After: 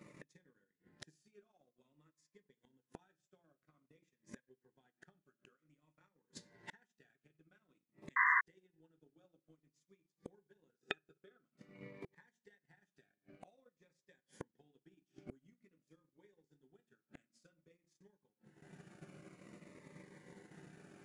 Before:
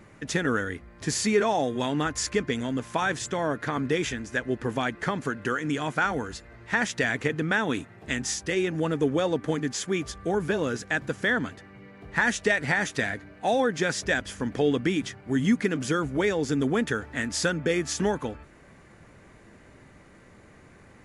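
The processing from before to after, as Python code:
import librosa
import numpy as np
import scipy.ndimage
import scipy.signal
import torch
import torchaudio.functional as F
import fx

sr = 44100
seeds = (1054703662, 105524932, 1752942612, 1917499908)

y = scipy.signal.sosfilt(scipy.signal.butter(4, 130.0, 'highpass', fs=sr, output='sos'), x)
y = y + 0.35 * np.pad(y, (int(5.5 * sr / 1000.0), 0))[:len(y)]
y = fx.room_shoebox(y, sr, seeds[0], volume_m3=38.0, walls='mixed', distance_m=0.36)
y = fx.transient(y, sr, attack_db=10, sustain_db=-12)
y = fx.gate_flip(y, sr, shuts_db=-27.0, range_db=-42)
y = fx.spec_paint(y, sr, seeds[1], shape='noise', start_s=8.16, length_s=0.25, low_hz=970.0, high_hz=2100.0, level_db=-20.0)
y = fx.small_body(y, sr, hz=(410.0, 1300.0, 2500.0, 3600.0), ring_ms=45, db=13, at=(10.81, 11.43))
y = fx.notch_cascade(y, sr, direction='falling', hz=0.51)
y = y * 10.0 ** (-7.0 / 20.0)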